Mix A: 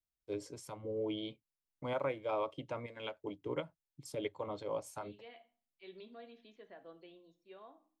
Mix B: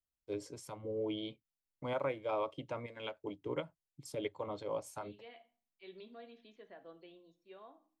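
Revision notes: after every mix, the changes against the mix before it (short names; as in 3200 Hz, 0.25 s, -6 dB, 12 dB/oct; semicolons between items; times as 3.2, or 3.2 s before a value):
none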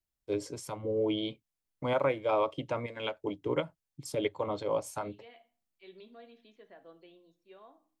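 first voice +7.5 dB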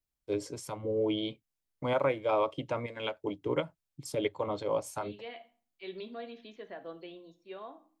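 second voice +10.0 dB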